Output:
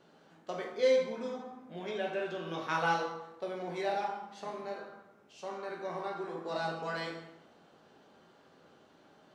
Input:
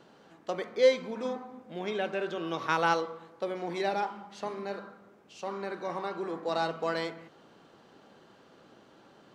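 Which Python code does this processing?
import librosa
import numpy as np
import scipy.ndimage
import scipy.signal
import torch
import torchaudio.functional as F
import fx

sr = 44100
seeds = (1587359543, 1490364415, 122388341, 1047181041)

y = fx.rev_plate(x, sr, seeds[0], rt60_s=0.72, hf_ratio=0.85, predelay_ms=0, drr_db=-1.0)
y = y * librosa.db_to_amplitude(-7.0)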